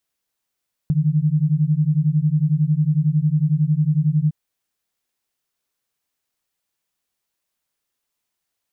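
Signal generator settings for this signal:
two tones that beat 147 Hz, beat 11 Hz, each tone −18 dBFS 3.41 s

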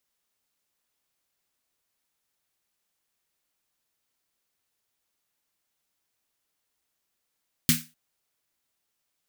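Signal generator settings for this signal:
synth snare length 0.25 s, tones 160 Hz, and 240 Hz, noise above 1,600 Hz, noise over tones 2.5 dB, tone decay 0.26 s, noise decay 0.28 s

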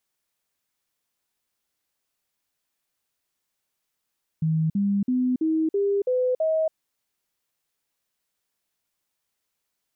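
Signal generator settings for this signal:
stepped sweep 159 Hz up, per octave 3, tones 7, 0.28 s, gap 0.05 s −19.5 dBFS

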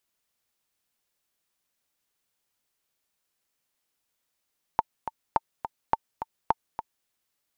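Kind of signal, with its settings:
click track 210 BPM, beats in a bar 2, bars 4, 897 Hz, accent 10.5 dB −7.5 dBFS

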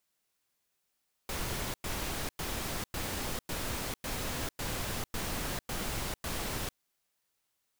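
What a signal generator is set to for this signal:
noise bursts pink, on 0.45 s, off 0.10 s, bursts 10, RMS −35.5 dBFS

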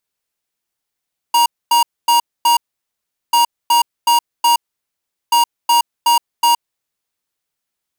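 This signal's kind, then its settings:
beeps in groups square 945 Hz, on 0.12 s, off 0.25 s, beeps 4, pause 0.76 s, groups 3, −11.5 dBFS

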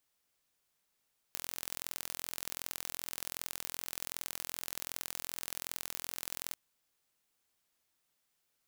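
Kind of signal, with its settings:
impulse train 42.6 per second, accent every 2, −10 dBFS 5.19 s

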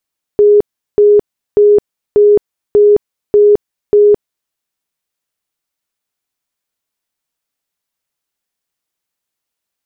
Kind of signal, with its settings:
tone bursts 414 Hz, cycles 89, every 0.59 s, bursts 7, −3.5 dBFS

